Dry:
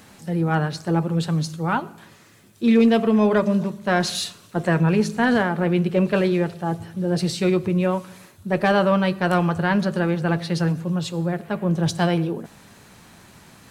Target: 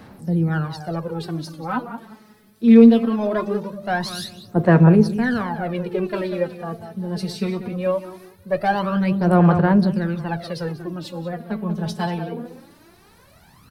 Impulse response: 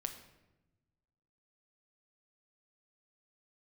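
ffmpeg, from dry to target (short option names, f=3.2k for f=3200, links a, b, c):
-filter_complex "[0:a]asplit=2[a][b];[b]adelay=188,lowpass=f=2.4k:p=1,volume=-10dB,asplit=2[c][d];[d]adelay=188,lowpass=f=2.4k:p=1,volume=0.25,asplit=2[e][f];[f]adelay=188,lowpass=f=2.4k:p=1,volume=0.25[g];[a][c][e][g]amix=inputs=4:normalize=0,aphaser=in_gain=1:out_gain=1:delay=4.7:decay=0.71:speed=0.21:type=sinusoidal,acrossover=split=330[h][i];[i]aexciter=amount=1.8:drive=1.1:freq=4k[j];[h][j]amix=inputs=2:normalize=0,highshelf=f=2.2k:g=-8,volume=-4dB"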